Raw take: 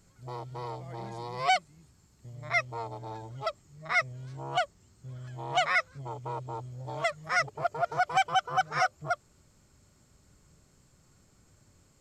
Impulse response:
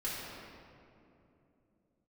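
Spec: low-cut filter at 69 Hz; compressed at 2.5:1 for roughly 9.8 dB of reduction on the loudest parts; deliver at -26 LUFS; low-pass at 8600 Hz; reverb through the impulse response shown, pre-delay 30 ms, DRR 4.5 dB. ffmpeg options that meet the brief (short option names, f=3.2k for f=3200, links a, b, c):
-filter_complex "[0:a]highpass=69,lowpass=8.6k,acompressor=threshold=-36dB:ratio=2.5,asplit=2[a][b];[1:a]atrim=start_sample=2205,adelay=30[c];[b][c]afir=irnorm=-1:irlink=0,volume=-8.5dB[d];[a][d]amix=inputs=2:normalize=0,volume=11.5dB"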